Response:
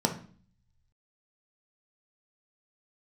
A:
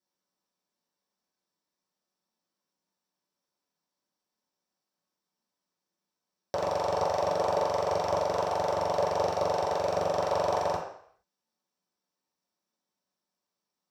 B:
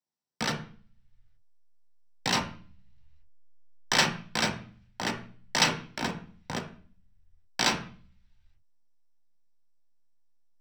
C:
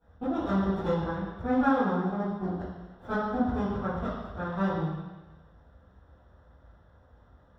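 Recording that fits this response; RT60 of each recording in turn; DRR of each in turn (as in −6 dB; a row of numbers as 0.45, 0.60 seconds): B; 0.65, 0.45, 1.2 seconds; −8.0, 3.0, −14.5 decibels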